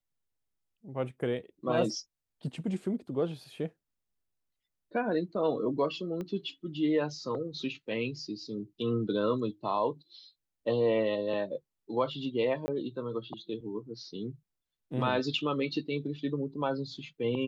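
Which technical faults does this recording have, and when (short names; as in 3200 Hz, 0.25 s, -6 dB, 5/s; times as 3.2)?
6.21 pop -26 dBFS
12.66–12.68 gap 20 ms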